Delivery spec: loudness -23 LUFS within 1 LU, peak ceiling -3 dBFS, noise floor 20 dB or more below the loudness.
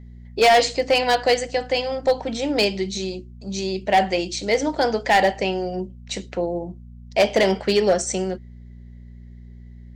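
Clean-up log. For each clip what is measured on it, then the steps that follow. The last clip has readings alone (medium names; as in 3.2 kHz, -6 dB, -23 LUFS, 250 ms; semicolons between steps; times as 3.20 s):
clipped samples 0.7%; clipping level -10.5 dBFS; hum 60 Hz; highest harmonic 240 Hz; hum level -39 dBFS; loudness -21.5 LUFS; peak level -10.5 dBFS; loudness target -23.0 LUFS
-> clip repair -10.5 dBFS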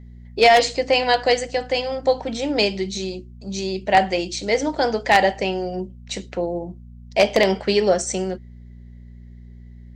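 clipped samples 0.0%; hum 60 Hz; highest harmonic 240 Hz; hum level -39 dBFS
-> de-hum 60 Hz, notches 4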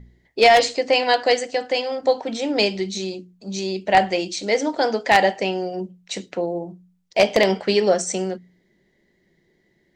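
hum not found; loudness -20.5 LUFS; peak level -1.5 dBFS; loudness target -23.0 LUFS
-> trim -2.5 dB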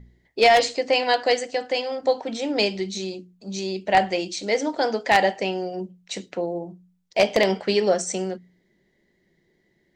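loudness -23.0 LUFS; peak level -4.0 dBFS; noise floor -68 dBFS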